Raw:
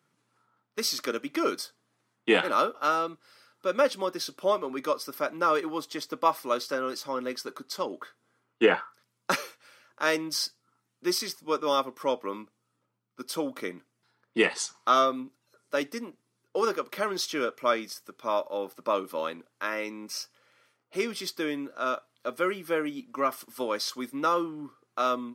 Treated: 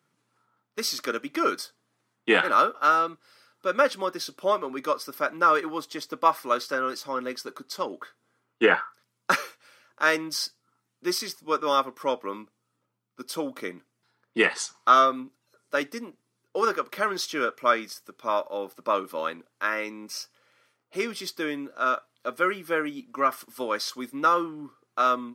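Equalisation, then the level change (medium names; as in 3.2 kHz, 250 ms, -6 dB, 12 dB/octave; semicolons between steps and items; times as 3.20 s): dynamic bell 1.5 kHz, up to +7 dB, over -40 dBFS, Q 1.4; 0.0 dB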